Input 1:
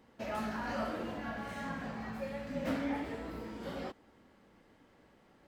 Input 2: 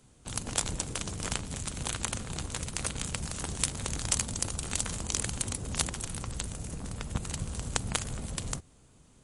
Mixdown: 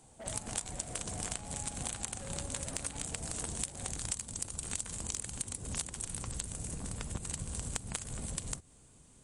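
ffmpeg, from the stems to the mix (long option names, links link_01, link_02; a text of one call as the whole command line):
ffmpeg -i stem1.wav -i stem2.wav -filter_complex "[0:a]lowpass=frequency=760:width_type=q:width=4.5,asoftclip=type=hard:threshold=-37dB,volume=-7dB[link_01];[1:a]equalizer=frequency=8400:width=2.1:gain=9,bandreject=frequency=1300:width=19,volume=-2dB[link_02];[link_01][link_02]amix=inputs=2:normalize=0,acompressor=threshold=-34dB:ratio=6" out.wav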